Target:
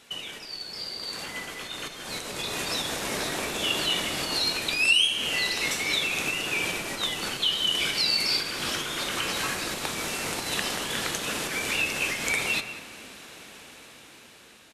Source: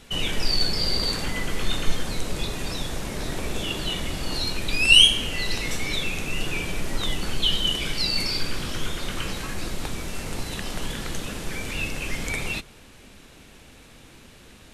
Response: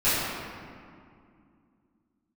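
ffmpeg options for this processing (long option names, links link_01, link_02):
-filter_complex "[0:a]acompressor=threshold=-28dB:ratio=6,asplit=2[link_01][link_02];[1:a]atrim=start_sample=2205[link_03];[link_02][link_03]afir=irnorm=-1:irlink=0,volume=-28dB[link_04];[link_01][link_04]amix=inputs=2:normalize=0,dynaudnorm=framelen=540:gausssize=7:maxgain=11dB,highpass=frequency=560:poles=1,asplit=2[link_05][link_06];[link_06]adelay=190,highpass=300,lowpass=3400,asoftclip=type=hard:threshold=-14.5dB,volume=-14dB[link_07];[link_05][link_07]amix=inputs=2:normalize=0,volume=-2.5dB"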